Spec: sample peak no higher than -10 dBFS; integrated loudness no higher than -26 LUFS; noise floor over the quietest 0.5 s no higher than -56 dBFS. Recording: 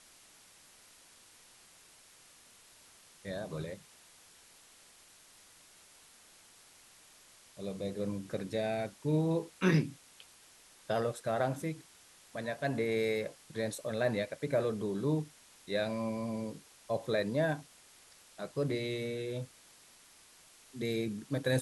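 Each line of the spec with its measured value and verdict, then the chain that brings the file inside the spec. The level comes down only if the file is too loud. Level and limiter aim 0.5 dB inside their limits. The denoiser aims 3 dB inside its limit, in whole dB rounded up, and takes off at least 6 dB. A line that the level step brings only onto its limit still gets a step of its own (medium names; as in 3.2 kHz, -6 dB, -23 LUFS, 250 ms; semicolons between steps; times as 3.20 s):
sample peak -16.0 dBFS: pass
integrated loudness -35.0 LUFS: pass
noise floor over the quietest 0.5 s -60 dBFS: pass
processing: none needed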